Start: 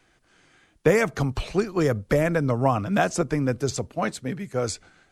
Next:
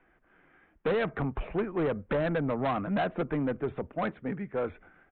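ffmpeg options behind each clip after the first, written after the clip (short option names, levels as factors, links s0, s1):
-af "lowpass=f=2100:w=0.5412,lowpass=f=2100:w=1.3066,equalizer=f=110:w=3.8:g=-15,aresample=8000,asoftclip=type=tanh:threshold=0.0794,aresample=44100,volume=0.841"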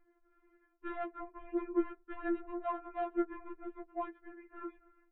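-af "lowpass=1500,bandreject=f=670:w=12,afftfilt=real='re*4*eq(mod(b,16),0)':imag='im*4*eq(mod(b,16),0)':win_size=2048:overlap=0.75,volume=0.668"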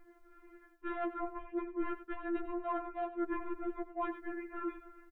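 -af "areverse,acompressor=threshold=0.00631:ratio=10,areverse,aecho=1:1:94:0.211,volume=3.35"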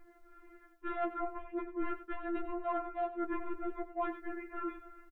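-filter_complex "[0:a]asplit=2[s0][s1];[s1]adelay=16,volume=0.335[s2];[s0][s2]amix=inputs=2:normalize=0,volume=1.12"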